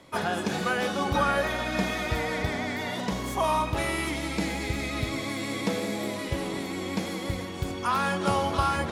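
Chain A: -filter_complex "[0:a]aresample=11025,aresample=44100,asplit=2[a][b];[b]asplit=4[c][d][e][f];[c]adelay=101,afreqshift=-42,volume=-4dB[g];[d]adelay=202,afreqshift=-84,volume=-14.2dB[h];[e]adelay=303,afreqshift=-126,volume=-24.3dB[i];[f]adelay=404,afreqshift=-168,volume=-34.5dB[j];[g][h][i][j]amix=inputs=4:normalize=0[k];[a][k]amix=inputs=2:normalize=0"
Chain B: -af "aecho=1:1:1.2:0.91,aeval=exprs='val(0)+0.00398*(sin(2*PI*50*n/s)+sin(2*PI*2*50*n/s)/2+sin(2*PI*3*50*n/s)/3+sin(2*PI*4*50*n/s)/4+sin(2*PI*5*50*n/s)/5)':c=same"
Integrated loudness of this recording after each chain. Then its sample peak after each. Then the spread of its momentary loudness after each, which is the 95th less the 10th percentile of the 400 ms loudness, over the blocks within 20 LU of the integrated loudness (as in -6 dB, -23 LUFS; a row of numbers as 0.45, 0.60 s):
-27.0, -26.0 LUFS; -11.5, -8.0 dBFS; 6, 7 LU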